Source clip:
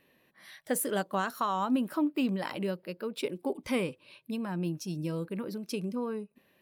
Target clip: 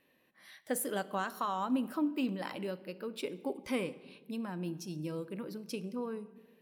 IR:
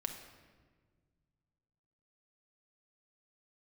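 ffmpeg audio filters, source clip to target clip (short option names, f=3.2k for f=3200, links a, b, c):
-filter_complex "[0:a]asplit=2[a][b];[b]highpass=130[c];[1:a]atrim=start_sample=2205,asetrate=57330,aresample=44100[d];[c][d]afir=irnorm=-1:irlink=0,volume=-3dB[e];[a][e]amix=inputs=2:normalize=0,volume=-7.5dB"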